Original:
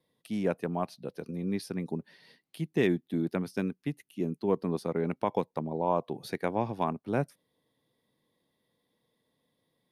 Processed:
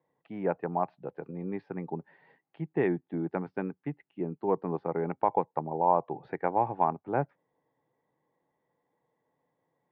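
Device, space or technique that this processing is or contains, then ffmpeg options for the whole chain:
bass cabinet: -af "highpass=66,equalizer=f=95:t=q:w=4:g=-9,equalizer=f=220:t=q:w=4:g=-10,equalizer=f=830:t=q:w=4:g=10,lowpass=f=2000:w=0.5412,lowpass=f=2000:w=1.3066"

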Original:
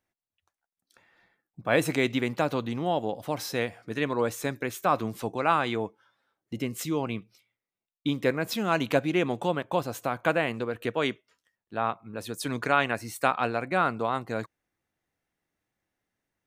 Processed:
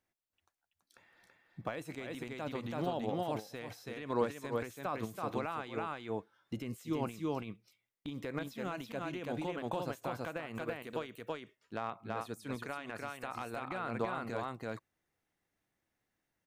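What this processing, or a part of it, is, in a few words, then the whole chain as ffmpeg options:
de-esser from a sidechain: -filter_complex "[0:a]asettb=1/sr,asplit=3[s0][s1][s2];[s0]atrim=end=10.554[s3];[s1]atrim=start=10.55:end=10.96,asetpts=PTS-STARTPTS,afade=t=in:d=0.004:c=qsin,afade=t=out:st=0.406:d=0.004:c=qsin,aemphasis=mode=production:type=50fm[s4];[s2]atrim=start=10.956[s5];[s3][s4]acrossfade=d=0.004:c1=hsin:c2=qsin[s6];[s6][s5]acrossfade=d=0.004:c1=qsin:c2=hsin,aecho=1:1:331:0.631,asplit=2[s7][s8];[s8]highpass=4300,apad=whole_len=740877[s9];[s7][s9]sidechaincompress=threshold=0.00316:ratio=8:attack=0.93:release=72,volume=0.75"

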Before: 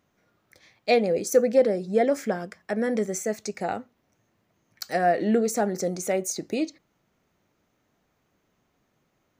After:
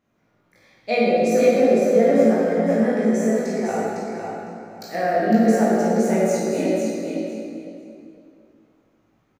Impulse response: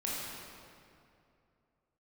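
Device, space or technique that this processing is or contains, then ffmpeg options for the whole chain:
swimming-pool hall: -filter_complex "[0:a]asplit=2[s0][s1];[s1]adelay=18,volume=0.596[s2];[s0][s2]amix=inputs=2:normalize=0,aecho=1:1:505|1010|1515:0.531|0.0903|0.0153[s3];[1:a]atrim=start_sample=2205[s4];[s3][s4]afir=irnorm=-1:irlink=0,highshelf=f=3700:g=-7.5,volume=0.891"

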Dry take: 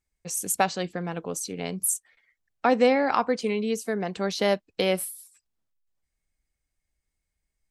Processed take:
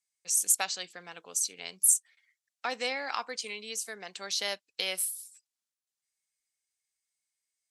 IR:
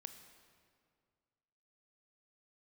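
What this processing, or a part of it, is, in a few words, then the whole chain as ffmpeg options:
piezo pickup straight into a mixer: -af "lowpass=8200,aderivative,volume=2.11"

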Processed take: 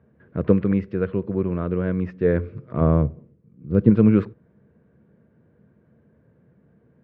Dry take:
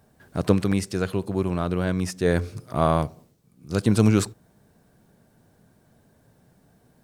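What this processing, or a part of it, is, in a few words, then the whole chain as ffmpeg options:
bass cabinet: -filter_complex "[0:a]asettb=1/sr,asplit=3[s0][s1][s2];[s0]atrim=end=2.814[s3];[s1]atrim=start=2.81:end=3.9,asetpts=PTS-STARTPTS,afade=t=in:d=0.004:c=qsin,afade=t=out:st=1.086:d=0.004:c=qsin,tiltshelf=f=670:g=5.5[s4];[s2]atrim=start=3.896[s5];[s3][s4]acrossfade=d=0.004:c1=hsin:c2=qsin[s6];[s6][s5]acrossfade=d=0.004:c1=qsin:c2=hsin,highpass=62,equalizer=f=76:t=q:w=4:g=8,equalizer=f=140:t=q:w=4:g=6,equalizer=f=210:t=q:w=4:g=7,equalizer=f=340:t=q:w=4:g=4,equalizer=f=480:t=q:w=4:g=8,equalizer=f=780:t=q:w=4:g=-9,lowpass=f=2300:w=0.5412,lowpass=f=2300:w=1.3066,volume=0.708"

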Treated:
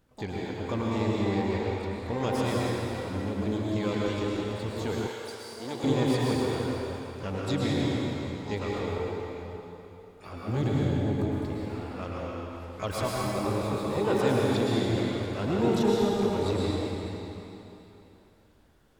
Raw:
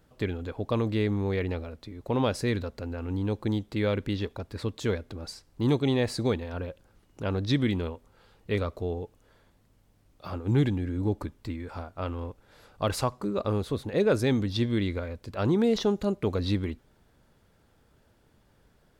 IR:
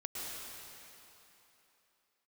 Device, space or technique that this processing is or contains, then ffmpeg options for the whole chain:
shimmer-style reverb: -filter_complex "[0:a]asplit=2[s0][s1];[s1]asetrate=88200,aresample=44100,atempo=0.5,volume=0.355[s2];[s0][s2]amix=inputs=2:normalize=0[s3];[1:a]atrim=start_sample=2205[s4];[s3][s4]afir=irnorm=-1:irlink=0,asettb=1/sr,asplit=3[s5][s6][s7];[s5]atrim=end=5.074[s8];[s6]atrim=start=5.07:end=5.84,asetpts=PTS-STARTPTS,afade=t=in:d=0.004:c=qsin,afade=t=out:st=0.766:d=0.004:c=qsin,highpass=f=680:p=1[s9];[s7]atrim=start=5.836[s10];[s8][s9]acrossfade=d=0.004:c1=hsin:c2=qsin[s11];[s11][s10]acrossfade=d=0.004:c1=qsin:c2=hsin,volume=0.841"

